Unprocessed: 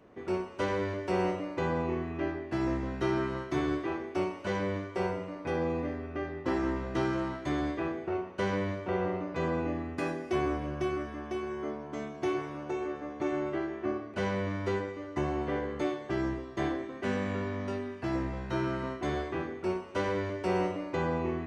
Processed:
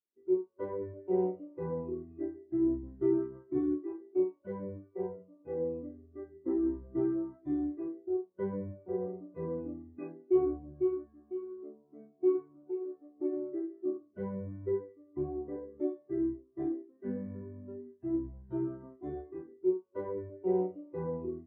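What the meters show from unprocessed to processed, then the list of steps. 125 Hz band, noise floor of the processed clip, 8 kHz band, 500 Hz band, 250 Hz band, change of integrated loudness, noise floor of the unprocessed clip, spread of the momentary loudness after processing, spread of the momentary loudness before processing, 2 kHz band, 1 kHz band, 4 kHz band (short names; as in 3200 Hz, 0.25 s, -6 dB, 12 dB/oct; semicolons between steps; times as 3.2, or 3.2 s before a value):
-8.5 dB, -67 dBFS, n/a, -1.5 dB, -1.5 dB, -2.5 dB, -44 dBFS, 12 LU, 5 LU, under -20 dB, -14.0 dB, under -35 dB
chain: spectral expander 2.5:1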